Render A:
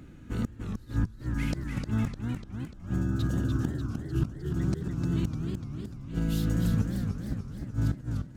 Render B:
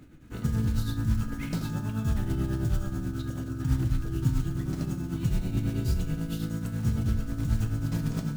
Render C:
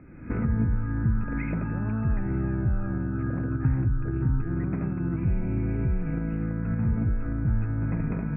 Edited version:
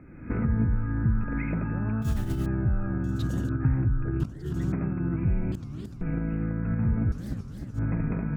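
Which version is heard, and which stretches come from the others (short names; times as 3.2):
C
2.02–2.46 from B
3.04–3.49 from A
4.2–4.72 from A
5.52–6.01 from A
7.12–7.79 from A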